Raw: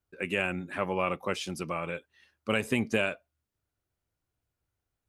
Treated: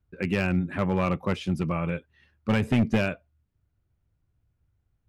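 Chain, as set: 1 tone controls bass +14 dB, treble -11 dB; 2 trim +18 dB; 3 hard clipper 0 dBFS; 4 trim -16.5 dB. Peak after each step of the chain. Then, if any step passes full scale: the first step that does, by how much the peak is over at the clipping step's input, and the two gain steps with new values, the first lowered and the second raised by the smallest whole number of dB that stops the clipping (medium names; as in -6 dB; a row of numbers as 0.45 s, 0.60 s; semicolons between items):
-9.0 dBFS, +9.0 dBFS, 0.0 dBFS, -16.5 dBFS; step 2, 9.0 dB; step 2 +9 dB, step 4 -7.5 dB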